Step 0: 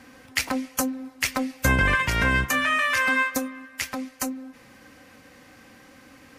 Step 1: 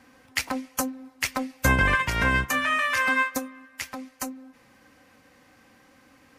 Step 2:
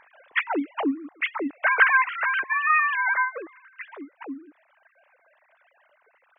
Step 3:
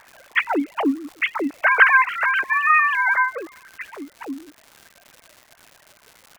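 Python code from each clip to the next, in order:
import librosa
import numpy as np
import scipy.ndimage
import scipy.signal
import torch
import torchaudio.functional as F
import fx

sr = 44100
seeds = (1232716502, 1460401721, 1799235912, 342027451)

y1 = fx.peak_eq(x, sr, hz=920.0, db=3.0, octaves=0.86)
y1 = fx.upward_expand(y1, sr, threshold_db=-31.0, expansion=1.5)
y2 = fx.sine_speech(y1, sr)
y2 = fx.rider(y2, sr, range_db=5, speed_s=2.0)
y2 = y2 * librosa.db_to_amplitude(1.5)
y3 = fx.dmg_crackle(y2, sr, seeds[0], per_s=260.0, level_db=-38.0)
y3 = y3 * librosa.db_to_amplitude(4.5)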